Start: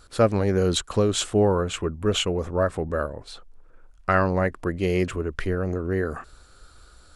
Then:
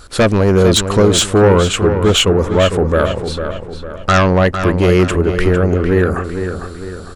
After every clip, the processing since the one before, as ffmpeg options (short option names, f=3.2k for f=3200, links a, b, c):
-filter_complex "[0:a]aeval=exprs='0.447*(cos(1*acos(clip(val(0)/0.447,-1,1)))-cos(1*PI/2))+0.2*(cos(5*acos(clip(val(0)/0.447,-1,1)))-cos(5*PI/2))':c=same,asplit=2[a][b];[b]adelay=453,lowpass=f=4.2k:p=1,volume=-8dB,asplit=2[c][d];[d]adelay=453,lowpass=f=4.2k:p=1,volume=0.45,asplit=2[e][f];[f]adelay=453,lowpass=f=4.2k:p=1,volume=0.45,asplit=2[g][h];[h]adelay=453,lowpass=f=4.2k:p=1,volume=0.45,asplit=2[i][j];[j]adelay=453,lowpass=f=4.2k:p=1,volume=0.45[k];[c][e][g][i][k]amix=inputs=5:normalize=0[l];[a][l]amix=inputs=2:normalize=0,volume=3dB"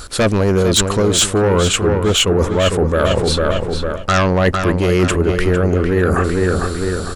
-af "highshelf=f=4.3k:g=5.5,areverse,acompressor=threshold=-19dB:ratio=10,areverse,volume=7.5dB"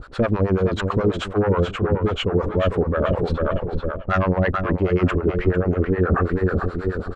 -filter_complex "[0:a]lowpass=1.7k,acrossover=split=570[a][b];[a]aeval=exprs='val(0)*(1-1/2+1/2*cos(2*PI*9.3*n/s))':c=same[c];[b]aeval=exprs='val(0)*(1-1/2-1/2*cos(2*PI*9.3*n/s))':c=same[d];[c][d]amix=inputs=2:normalize=0"